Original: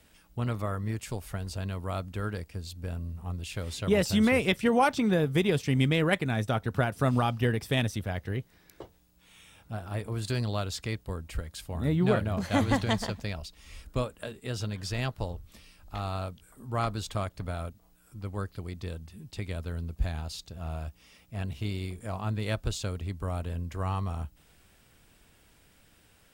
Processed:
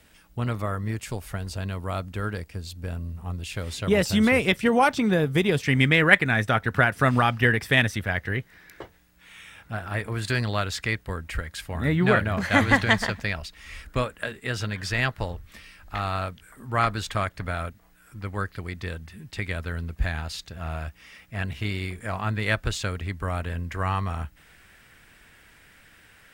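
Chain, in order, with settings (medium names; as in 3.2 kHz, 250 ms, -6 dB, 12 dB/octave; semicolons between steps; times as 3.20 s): peaking EQ 1.8 kHz +3.5 dB 1.1 oct, from 5.62 s +12.5 dB; trim +3 dB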